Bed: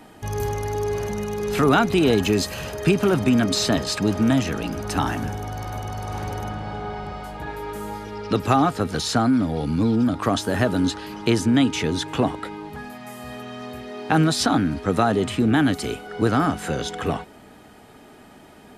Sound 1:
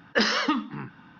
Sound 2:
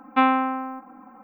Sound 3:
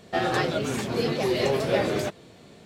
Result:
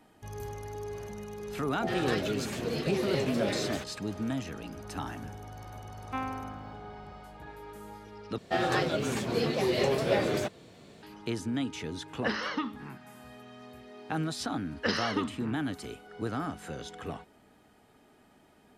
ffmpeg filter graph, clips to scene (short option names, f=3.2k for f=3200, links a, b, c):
-filter_complex "[3:a]asplit=2[a][b];[1:a]asplit=2[c][d];[0:a]volume=-14dB[e];[a]acrossover=split=890[f][g];[g]adelay=60[h];[f][h]amix=inputs=2:normalize=0[i];[c]acrossover=split=2900[j][k];[k]acompressor=threshold=-34dB:ratio=4:attack=1:release=60[l];[j][l]amix=inputs=2:normalize=0[m];[e]asplit=2[n][o];[n]atrim=end=8.384[p];[b]atrim=end=2.65,asetpts=PTS-STARTPTS,volume=-3dB[q];[o]atrim=start=11.026[r];[i]atrim=end=2.65,asetpts=PTS-STARTPTS,volume=-6.5dB,afade=t=in:d=0.004:c=hsin,afade=t=out:st=2.646:d=0.004:c=hsin,adelay=1680[s];[2:a]atrim=end=1.23,asetpts=PTS-STARTPTS,volume=-16.5dB,afade=t=in:d=0.004:c=hsin,afade=t=out:st=1.226:d=0.004:c=hsin,adelay=5960[t];[m]atrim=end=1.19,asetpts=PTS-STARTPTS,volume=-8dB,afade=t=in:d=0.004:c=hsin,afade=t=out:st=1.186:d=0.004:c=hsin,adelay=12090[u];[d]atrim=end=1.19,asetpts=PTS-STARTPTS,volume=-8dB,afade=t=in:d=0.004:c=hsin,afade=t=out:st=1.186:d=0.004:c=hsin,adelay=14680[v];[p][q]acrossfade=d=0.004:c1=hsin:c2=hsin[w];[w][r]acrossfade=d=0.004:c1=hsin:c2=hsin[x];[x][s][t][u][v]amix=inputs=5:normalize=0"